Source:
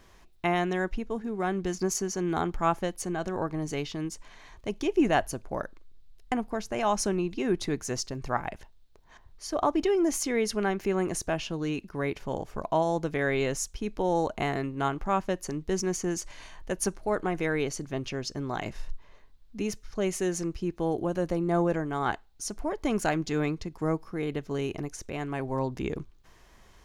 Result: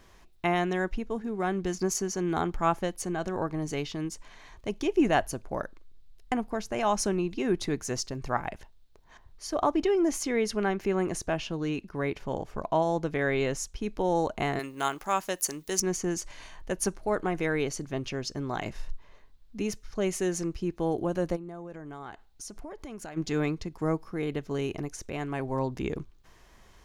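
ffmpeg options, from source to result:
-filter_complex "[0:a]asettb=1/sr,asplit=3[a][b][c];[a]atrim=end=9.754[d];[b]atrim=start=9.75:end=13.81,asetpts=PTS-STARTPTS,afade=t=in:d=0.004:c=qsin,afade=t=out:st=4.056:d=0.004:c=qsin,highshelf=f=7.3k:g=-6[e];[c]atrim=start=13.806[f];[d][e]acrossfade=d=0.004:c1=hsin:c2=qsin[g];[g][f]acrossfade=d=0.004:c1=qsin:c2=hsin,asettb=1/sr,asplit=3[h][i][j];[h]atrim=end=14.594[k];[i]atrim=start=14.59:end=15.8,asetpts=PTS-STARTPTS,afade=t=in:d=0.004:c=qsin,afade=t=out:st=1.206:d=0.004:c=qsin,aemphasis=mode=production:type=riaa[l];[j]atrim=start=15.796[m];[k][l]acrossfade=d=0.004:c1=hsin:c2=qsin[n];[n][m]acrossfade=d=0.004:c1=qsin:c2=hsin,asplit=3[o][p][q];[o]afade=t=out:st=21.35:d=0.02[r];[p]acompressor=threshold=-38dB:ratio=6:attack=3.2:release=140:knee=1:detection=peak,afade=t=in:st=21.35:d=0.02,afade=t=out:st=23.16:d=0.02[s];[q]afade=t=in:st=23.16:d=0.02[t];[r][s][t]amix=inputs=3:normalize=0"

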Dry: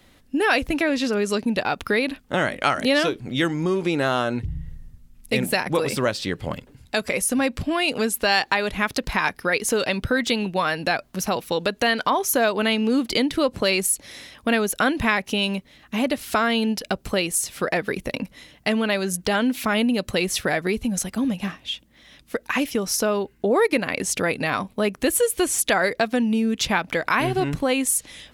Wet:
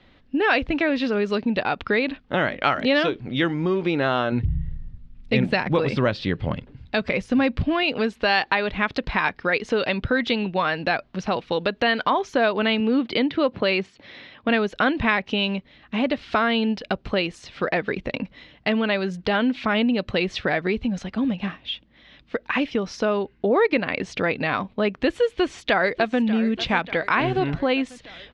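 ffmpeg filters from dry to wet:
-filter_complex "[0:a]asettb=1/sr,asplit=3[a][b][c];[a]atrim=end=4.324[d];[b]atrim=start=4.32:end=7.83,asetpts=PTS-STARTPTS,afade=t=in:d=0.004:c=qsin,afade=t=out:st=3.506:d=0.004:c=qsin,bass=f=250:g=6,treble=f=4k:g=0[e];[c]atrim=start=7.826[f];[d][e]acrossfade=d=0.004:c1=hsin:c2=qsin[g];[g][f]acrossfade=d=0.004:c1=qsin:c2=hsin,asettb=1/sr,asplit=3[h][i][j];[h]atrim=end=12.804[k];[i]atrim=start=12.8:end=14.49,asetpts=PTS-STARTPTS,afade=t=in:d=0.004:c=qsin,afade=t=out:st=1.686:d=0.004:c=qsin,highpass=100,lowpass=4.3k[l];[j]atrim=start=14.486[m];[k][l]acrossfade=d=0.004:c1=hsin:c2=qsin[n];[n][m]acrossfade=d=0.004:c1=qsin:c2=hsin,asplit=2[o][p];[p]afade=t=in:st=25.26:d=0.01,afade=t=out:st=26.2:d=0.01,aecho=0:1:590|1180|1770|2360|2950|3540|4130:0.177828|0.115588|0.0751323|0.048836|0.0317434|0.0206332|0.0134116[q];[o][q]amix=inputs=2:normalize=0,lowpass=f=4k:w=0.5412,lowpass=f=4k:w=1.3066"

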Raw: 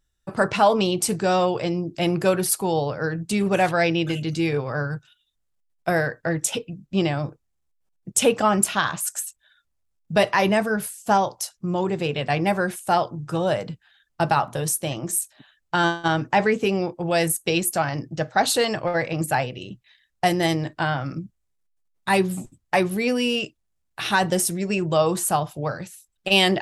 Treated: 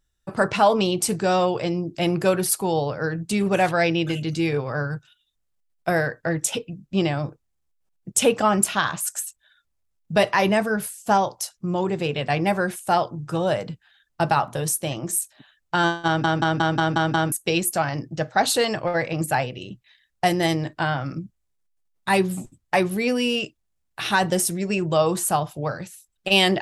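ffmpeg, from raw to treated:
-filter_complex "[0:a]asplit=8[a][b][c][d][e][f][g][h];[a]atrim=end=16.242[i];[b]atrim=start=16.058:end=16.242[j];[c]atrim=start=16.058:end=16.242[k];[d]atrim=start=16.058:end=16.242[l];[e]atrim=start=16.058:end=16.242[m];[f]atrim=start=16.058:end=16.242[n];[g]atrim=start=16.058:end=16.242[o];[h]atrim=start=17.318[p];[i][j]acrossfade=d=0.004:c1=hsin:c2=hsin[q];[q][k]acrossfade=d=0.004:c1=hsin:c2=hsin[r];[r][l]acrossfade=d=0.004:c1=hsin:c2=hsin[s];[s][m]acrossfade=d=0.004:c1=hsin:c2=hsin[t];[t][n]acrossfade=d=0.004:c1=hsin:c2=hsin[u];[u][o]acrossfade=d=0.004:c1=hsin:c2=hsin[v];[v][p]acrossfade=d=0.004:c1=hsin:c2=hsin"

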